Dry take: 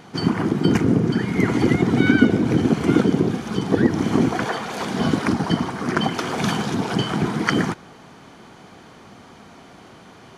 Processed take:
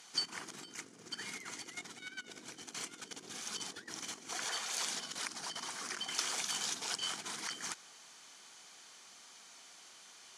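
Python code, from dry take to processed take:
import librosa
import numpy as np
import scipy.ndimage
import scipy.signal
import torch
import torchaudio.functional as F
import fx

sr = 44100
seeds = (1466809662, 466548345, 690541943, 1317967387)

y = fx.over_compress(x, sr, threshold_db=-24.0, ratio=-1.0)
y = fx.bandpass_q(y, sr, hz=7500.0, q=1.4)
y = y * 10.0 ** (1.0 / 20.0)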